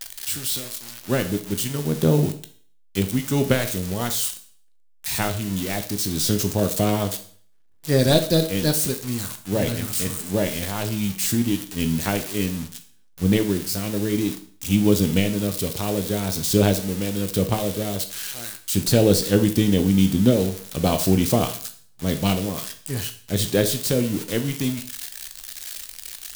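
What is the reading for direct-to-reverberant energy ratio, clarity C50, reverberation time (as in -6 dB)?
7.0 dB, 12.0 dB, 0.50 s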